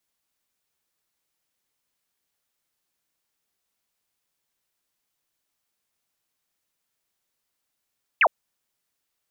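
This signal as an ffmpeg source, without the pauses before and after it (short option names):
-f lavfi -i "aevalsrc='0.211*clip(t/0.002,0,1)*clip((0.06-t)/0.002,0,1)*sin(2*PI*3000*0.06/log(530/3000)*(exp(log(530/3000)*t/0.06)-1))':d=0.06:s=44100"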